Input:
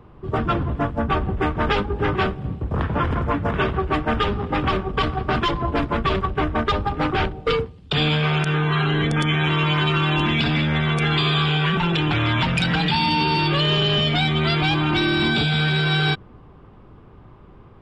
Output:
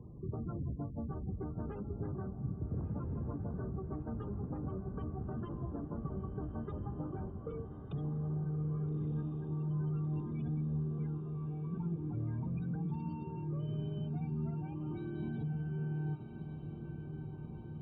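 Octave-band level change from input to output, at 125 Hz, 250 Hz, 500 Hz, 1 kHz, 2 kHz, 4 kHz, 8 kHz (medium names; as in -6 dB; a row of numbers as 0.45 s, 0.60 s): -14.0 dB, -15.5 dB, -21.0 dB, -29.0 dB, under -35 dB, under -40 dB, no reading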